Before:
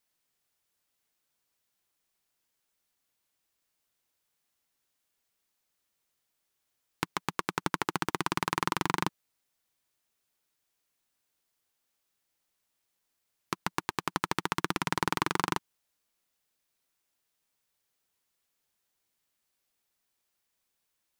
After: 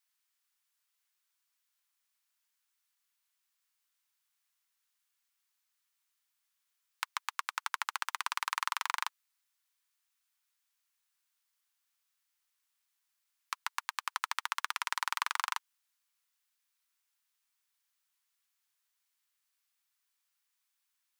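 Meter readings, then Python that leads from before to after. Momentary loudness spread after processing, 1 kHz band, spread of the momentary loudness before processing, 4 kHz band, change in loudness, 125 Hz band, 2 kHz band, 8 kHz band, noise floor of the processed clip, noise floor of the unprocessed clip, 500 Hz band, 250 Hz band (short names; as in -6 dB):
6 LU, -4.0 dB, 6 LU, -1.5 dB, -3.5 dB, under -40 dB, -1.5 dB, -1.5 dB, -82 dBFS, -81 dBFS, -25.0 dB, under -40 dB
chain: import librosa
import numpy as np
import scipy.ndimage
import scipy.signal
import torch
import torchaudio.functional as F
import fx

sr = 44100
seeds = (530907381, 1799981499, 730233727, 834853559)

y = scipy.signal.sosfilt(scipy.signal.butter(4, 990.0, 'highpass', fs=sr, output='sos'), x)
y = y * librosa.db_to_amplitude(-1.5)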